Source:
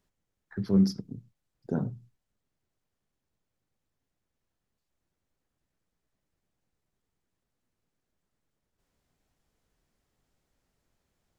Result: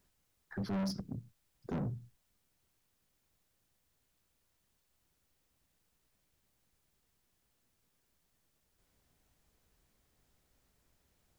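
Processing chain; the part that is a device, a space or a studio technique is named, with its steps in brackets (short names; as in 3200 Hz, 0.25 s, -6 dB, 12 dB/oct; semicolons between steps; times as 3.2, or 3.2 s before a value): open-reel tape (soft clip -34 dBFS, distortion -3 dB; bell 62 Hz +4.5 dB 1.07 oct; white noise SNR 33 dB); gain +1 dB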